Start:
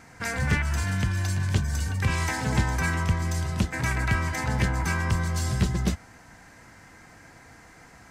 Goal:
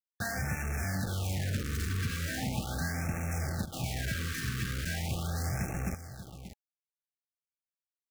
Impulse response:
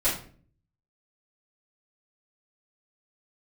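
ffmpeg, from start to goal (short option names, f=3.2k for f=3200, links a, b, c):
-filter_complex "[0:a]highpass=f=99:p=1,highshelf=f=2.6k:g=-9,aecho=1:1:1.2:0.98,asettb=1/sr,asplit=3[a][b][c];[a]atrim=end=0.954[d];[b]atrim=start=0.95:end=3.26,asetpts=PTS-STARTPTS,afade=t=in:d=0.004:c=qsin,afade=t=out:st=2.306:d=0.004:c=qsin,equalizer=f=240:t=o:w=0.78:g=6.5[e];[c]atrim=start=3.256[f];[d][e]acrossfade=d=0.004:c1=hsin:c2=qsin[g];[g][f]acrossfade=d=0.004:c1=qsin:c2=hsin,acompressor=threshold=-32dB:ratio=6,acrusher=bits=5:mix=0:aa=0.000001,asuperstop=centerf=1000:order=8:qfactor=5.1,aecho=1:1:585:0.251,afftfilt=real='re*(1-between(b*sr/1024,660*pow(3900/660,0.5+0.5*sin(2*PI*0.39*pts/sr))/1.41,660*pow(3900/660,0.5+0.5*sin(2*PI*0.39*pts/sr))*1.41))':imag='im*(1-between(b*sr/1024,660*pow(3900/660,0.5+0.5*sin(2*PI*0.39*pts/sr))/1.41,660*pow(3900/660,0.5+0.5*sin(2*PI*0.39*pts/sr))*1.41))':win_size=1024:overlap=0.75"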